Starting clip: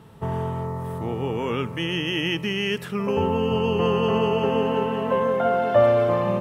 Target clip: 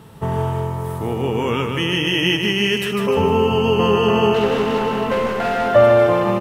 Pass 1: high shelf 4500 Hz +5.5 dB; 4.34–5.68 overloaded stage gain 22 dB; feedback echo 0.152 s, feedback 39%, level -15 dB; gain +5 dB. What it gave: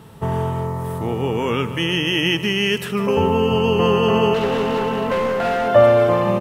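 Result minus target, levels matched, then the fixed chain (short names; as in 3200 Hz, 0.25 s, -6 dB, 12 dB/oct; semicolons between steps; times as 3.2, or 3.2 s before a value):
echo-to-direct -10 dB
high shelf 4500 Hz +5.5 dB; 4.34–5.68 overloaded stage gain 22 dB; feedback echo 0.152 s, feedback 39%, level -5 dB; gain +5 dB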